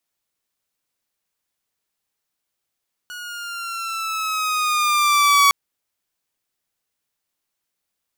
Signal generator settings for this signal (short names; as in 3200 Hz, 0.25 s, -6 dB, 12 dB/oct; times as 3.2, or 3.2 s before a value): gliding synth tone saw, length 2.41 s, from 1460 Hz, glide -4.5 st, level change +21 dB, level -8 dB